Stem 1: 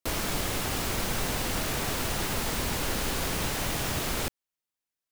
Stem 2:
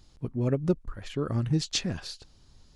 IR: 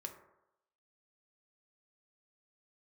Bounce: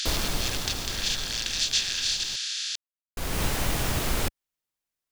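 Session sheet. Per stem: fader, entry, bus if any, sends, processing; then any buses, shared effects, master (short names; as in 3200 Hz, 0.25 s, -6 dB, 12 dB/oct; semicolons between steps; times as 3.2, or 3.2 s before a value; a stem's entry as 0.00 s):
+1.5 dB, 0.00 s, muted 2.36–3.17, no send, low shelf 71 Hz +8.5 dB; auto duck -19 dB, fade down 2.00 s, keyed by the second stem
+2.0 dB, 0.00 s, no send, per-bin compression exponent 0.2; elliptic high-pass 1600 Hz, stop band 50 dB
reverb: off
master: dry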